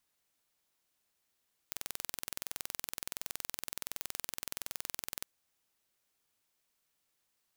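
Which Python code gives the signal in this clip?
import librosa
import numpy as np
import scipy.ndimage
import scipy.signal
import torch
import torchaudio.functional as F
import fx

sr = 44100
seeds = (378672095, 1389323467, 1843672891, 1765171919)

y = 10.0 ** (-10.0 / 20.0) * (np.mod(np.arange(round(3.52 * sr)), round(sr / 21.4)) == 0)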